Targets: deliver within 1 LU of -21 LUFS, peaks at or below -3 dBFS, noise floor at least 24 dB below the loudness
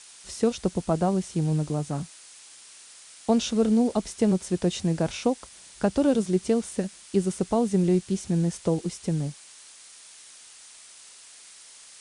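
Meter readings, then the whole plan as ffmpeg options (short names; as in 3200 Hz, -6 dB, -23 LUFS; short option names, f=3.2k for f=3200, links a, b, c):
noise floor -49 dBFS; noise floor target -50 dBFS; loudness -26.0 LUFS; peak -10.0 dBFS; loudness target -21.0 LUFS
-> -af "afftdn=nr=6:nf=-49"
-af "volume=5dB"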